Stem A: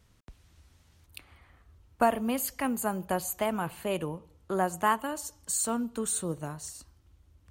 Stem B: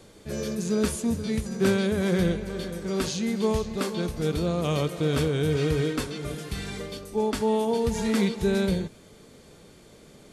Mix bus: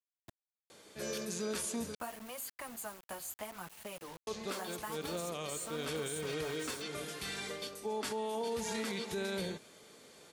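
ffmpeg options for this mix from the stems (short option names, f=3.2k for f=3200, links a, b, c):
-filter_complex "[0:a]acrossover=split=580|1500|6200[a][b][c][d];[a]acompressor=threshold=-48dB:ratio=4[e];[b]acompressor=threshold=-42dB:ratio=4[f];[c]acompressor=threshold=-46dB:ratio=4[g];[d]acompressor=threshold=-37dB:ratio=4[h];[e][f][g][h]amix=inputs=4:normalize=0,flanger=delay=4.4:depth=10:regen=-11:speed=0.8:shape=sinusoidal,acrusher=bits=7:mix=0:aa=0.000001,volume=-2dB,asplit=2[i][j];[1:a]highpass=f=690:p=1,adelay=700,volume=-1.5dB,asplit=3[k][l][m];[k]atrim=end=1.95,asetpts=PTS-STARTPTS,afade=t=out:st=1.946:d=0.004:c=hsin[n];[l]atrim=start=1.95:end=4.27,asetpts=PTS-STARTPTS,volume=0[o];[m]atrim=start=4.27,asetpts=PTS-STARTPTS,afade=t=in:d=0.004:c=hsin[p];[n][o][p]concat=n=3:v=0:a=1[q];[j]apad=whole_len=486377[r];[q][r]sidechaincompress=threshold=-46dB:ratio=8:attack=28:release=401[s];[i][s]amix=inputs=2:normalize=0,alimiter=level_in=5dB:limit=-24dB:level=0:latency=1:release=17,volume=-5dB"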